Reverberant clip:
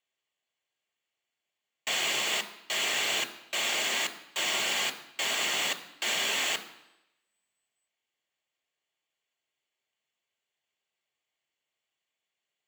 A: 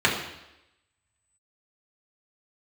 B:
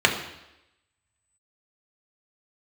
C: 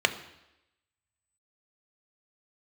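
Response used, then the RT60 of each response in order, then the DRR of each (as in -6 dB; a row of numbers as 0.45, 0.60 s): C; 0.90, 0.90, 0.90 s; -5.0, 0.5, 7.5 dB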